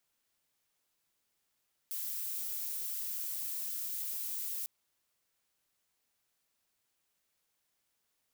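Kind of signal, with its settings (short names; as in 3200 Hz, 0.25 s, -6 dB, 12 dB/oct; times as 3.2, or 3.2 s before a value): noise violet, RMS -38 dBFS 2.75 s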